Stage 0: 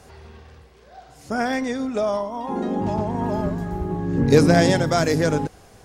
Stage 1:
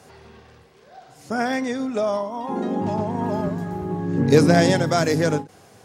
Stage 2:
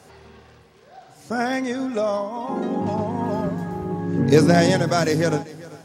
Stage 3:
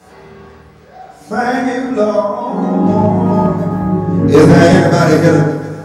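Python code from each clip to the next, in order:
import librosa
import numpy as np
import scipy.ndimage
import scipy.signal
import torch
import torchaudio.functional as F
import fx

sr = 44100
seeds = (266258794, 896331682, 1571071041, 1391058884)

y1 = scipy.signal.sosfilt(scipy.signal.butter(4, 98.0, 'highpass', fs=sr, output='sos'), x)
y1 = fx.end_taper(y1, sr, db_per_s=220.0)
y2 = fx.echo_feedback(y1, sr, ms=392, feedback_pct=31, wet_db=-19.0)
y3 = fx.rev_fdn(y2, sr, rt60_s=1.1, lf_ratio=1.25, hf_ratio=0.45, size_ms=95.0, drr_db=-10.0)
y3 = fx.quant_dither(y3, sr, seeds[0], bits=12, dither='none')
y3 = y3 * librosa.db_to_amplitude(-1.0)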